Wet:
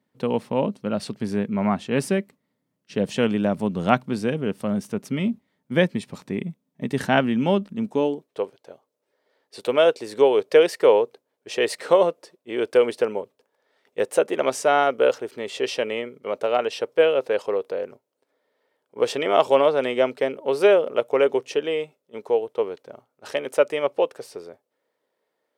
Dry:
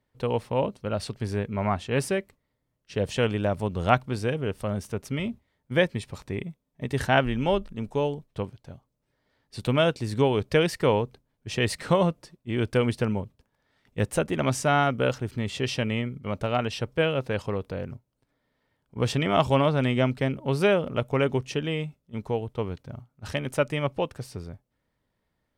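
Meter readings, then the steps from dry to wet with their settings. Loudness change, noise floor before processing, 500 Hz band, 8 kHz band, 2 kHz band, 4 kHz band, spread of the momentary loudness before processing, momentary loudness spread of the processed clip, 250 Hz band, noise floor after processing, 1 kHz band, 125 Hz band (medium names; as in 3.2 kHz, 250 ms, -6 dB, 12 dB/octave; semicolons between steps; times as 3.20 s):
+4.0 dB, -78 dBFS, +6.5 dB, +1.0 dB, +1.5 dB, +1.0 dB, 13 LU, 13 LU, +2.5 dB, -78 dBFS, +3.0 dB, -6.0 dB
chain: high-pass sweep 200 Hz -> 450 Hz, 7.82–8.43 s; trim +1 dB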